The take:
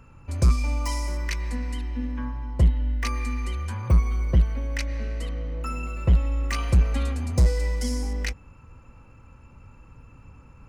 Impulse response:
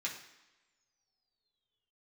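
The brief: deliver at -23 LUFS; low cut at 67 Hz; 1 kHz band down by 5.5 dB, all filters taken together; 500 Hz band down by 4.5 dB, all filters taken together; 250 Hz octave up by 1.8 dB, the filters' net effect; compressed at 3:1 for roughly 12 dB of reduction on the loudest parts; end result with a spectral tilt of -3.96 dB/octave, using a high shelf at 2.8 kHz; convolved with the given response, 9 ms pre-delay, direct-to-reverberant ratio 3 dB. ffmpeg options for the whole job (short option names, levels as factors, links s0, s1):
-filter_complex "[0:a]highpass=67,equalizer=f=250:t=o:g=3.5,equalizer=f=500:t=o:g=-4.5,equalizer=f=1000:t=o:g=-7.5,highshelf=f=2800:g=8,acompressor=threshold=0.0251:ratio=3,asplit=2[s0][s1];[1:a]atrim=start_sample=2205,adelay=9[s2];[s1][s2]afir=irnorm=-1:irlink=0,volume=0.562[s3];[s0][s3]amix=inputs=2:normalize=0,volume=3.55"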